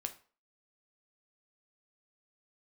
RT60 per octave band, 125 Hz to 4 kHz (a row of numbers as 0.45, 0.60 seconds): 0.35, 0.35, 0.40, 0.40, 0.35, 0.30 seconds